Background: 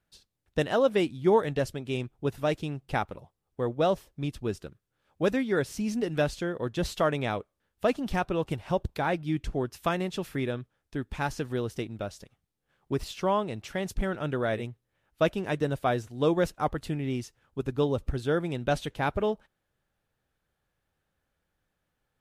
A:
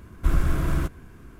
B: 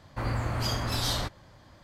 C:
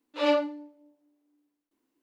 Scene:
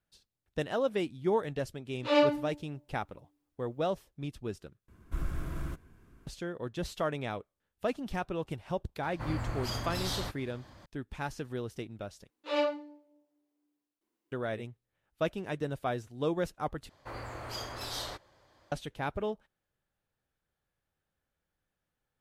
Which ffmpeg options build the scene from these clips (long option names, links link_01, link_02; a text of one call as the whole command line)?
ffmpeg -i bed.wav -i cue0.wav -i cue1.wav -i cue2.wav -filter_complex "[3:a]asplit=2[link_01][link_02];[2:a]asplit=2[link_03][link_04];[0:a]volume=-6.5dB[link_05];[link_03]acompressor=mode=upward:threshold=-39dB:ratio=2.5:attack=3.2:release=140:knee=2.83:detection=peak[link_06];[link_02]bandreject=frequency=270:width=5.6[link_07];[link_04]lowshelf=frequency=290:width_type=q:width=1.5:gain=-7.5[link_08];[link_05]asplit=4[link_09][link_10][link_11][link_12];[link_09]atrim=end=4.884[link_13];[1:a]atrim=end=1.39,asetpts=PTS-STARTPTS,volume=-13dB[link_14];[link_10]atrim=start=6.266:end=12.304[link_15];[link_07]atrim=end=2.02,asetpts=PTS-STARTPTS,volume=-5dB[link_16];[link_11]atrim=start=14.316:end=16.894[link_17];[link_08]atrim=end=1.83,asetpts=PTS-STARTPTS,volume=-8dB[link_18];[link_12]atrim=start=18.716[link_19];[link_01]atrim=end=2.02,asetpts=PTS-STARTPTS,volume=-0.5dB,afade=type=in:duration=0.004:curve=hsin,afade=type=out:start_time=2.016:duration=0.004:curve=hsin,adelay=1890[link_20];[link_06]atrim=end=1.83,asetpts=PTS-STARTPTS,volume=-6dB,afade=type=in:duration=0.004:curve=hsin,afade=type=out:start_time=1.826:duration=0.004:curve=hsin,adelay=9030[link_21];[link_13][link_14]acrossfade=duration=0.004:curve1=hsin:curve2=hsin[link_22];[link_22][link_15]acrossfade=duration=0.004:curve1=hsin:curve2=hsin[link_23];[link_23][link_16]acrossfade=duration=0.004:curve1=hsin:curve2=hsin[link_24];[link_24][link_17]acrossfade=duration=0.004:curve1=hsin:curve2=hsin[link_25];[link_25][link_18]acrossfade=duration=0.004:curve1=hsin:curve2=hsin[link_26];[link_26][link_19]acrossfade=duration=0.004:curve1=hsin:curve2=hsin[link_27];[link_27][link_20][link_21]amix=inputs=3:normalize=0" out.wav